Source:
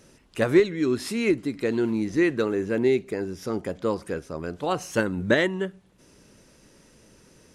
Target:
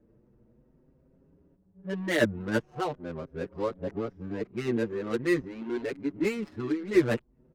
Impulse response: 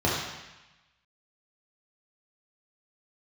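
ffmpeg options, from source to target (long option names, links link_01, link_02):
-filter_complex "[0:a]areverse,adynamicsmooth=sensitivity=4:basefreq=500,asplit=2[link_01][link_02];[link_02]adelay=6.5,afreqshift=0.45[link_03];[link_01][link_03]amix=inputs=2:normalize=1,volume=-1.5dB"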